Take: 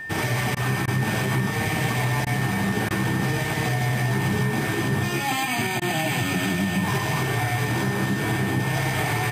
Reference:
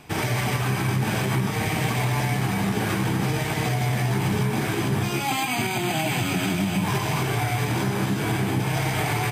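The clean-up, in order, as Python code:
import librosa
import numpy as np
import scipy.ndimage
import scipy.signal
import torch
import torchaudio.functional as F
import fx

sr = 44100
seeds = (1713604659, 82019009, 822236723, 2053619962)

y = fx.notch(x, sr, hz=1800.0, q=30.0)
y = fx.fix_interpolate(y, sr, at_s=(0.55, 0.86, 2.25, 2.89, 5.8), length_ms=15.0)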